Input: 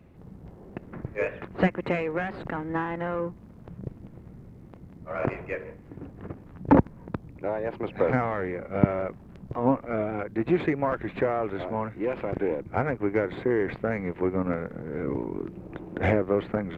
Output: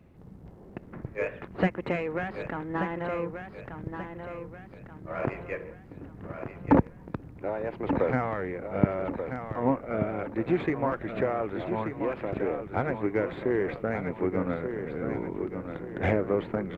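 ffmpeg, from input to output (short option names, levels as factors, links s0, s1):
-af "aecho=1:1:1183|2366|3549|4732|5915:0.398|0.167|0.0702|0.0295|0.0124,volume=0.75"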